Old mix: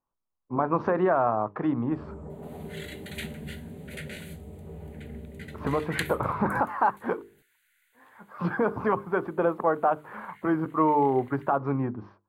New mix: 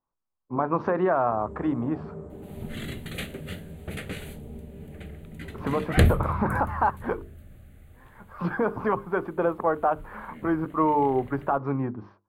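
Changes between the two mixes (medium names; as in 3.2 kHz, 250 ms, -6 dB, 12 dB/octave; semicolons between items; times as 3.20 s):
first sound: entry -0.60 s; second sound: remove rippled Chebyshev high-pass 1.4 kHz, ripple 3 dB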